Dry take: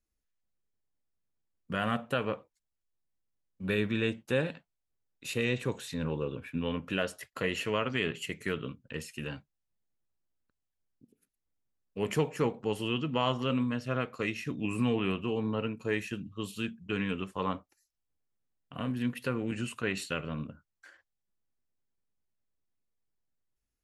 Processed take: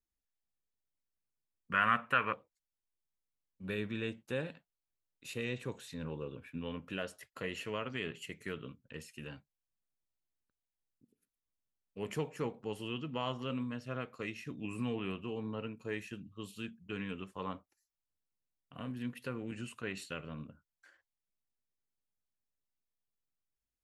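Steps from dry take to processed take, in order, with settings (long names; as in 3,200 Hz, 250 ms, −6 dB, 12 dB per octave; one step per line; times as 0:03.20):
0:01.72–0:02.33: flat-topped bell 1,600 Hz +14 dB
level −8 dB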